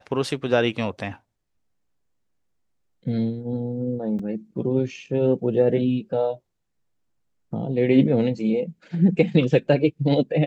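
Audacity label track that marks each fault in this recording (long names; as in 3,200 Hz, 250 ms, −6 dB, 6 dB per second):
4.190000	4.190000	drop-out 4.1 ms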